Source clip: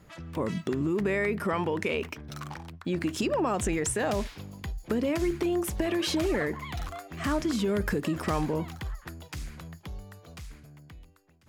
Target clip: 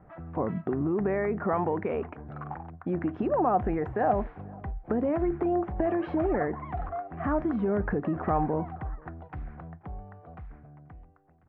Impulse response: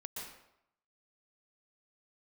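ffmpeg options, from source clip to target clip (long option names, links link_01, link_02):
-filter_complex "[0:a]lowpass=frequency=1600:width=0.5412,lowpass=frequency=1600:width=1.3066,equalizer=frequency=740:width=5.3:gain=11.5,asplit=2[link_01][link_02];[link_02]adelay=484,volume=-26dB,highshelf=frequency=4000:gain=-10.9[link_03];[link_01][link_03]amix=inputs=2:normalize=0"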